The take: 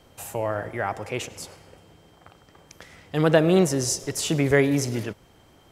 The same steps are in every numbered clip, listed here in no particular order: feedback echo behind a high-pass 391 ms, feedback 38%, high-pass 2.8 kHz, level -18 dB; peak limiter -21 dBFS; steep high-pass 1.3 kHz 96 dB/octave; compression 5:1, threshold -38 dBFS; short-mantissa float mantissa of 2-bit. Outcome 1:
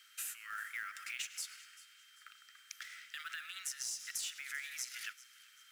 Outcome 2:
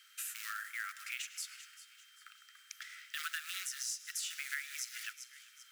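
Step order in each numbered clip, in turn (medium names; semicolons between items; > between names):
peak limiter > steep high-pass > compression > short-mantissa float > feedback echo behind a high-pass; feedback echo behind a high-pass > short-mantissa float > steep high-pass > compression > peak limiter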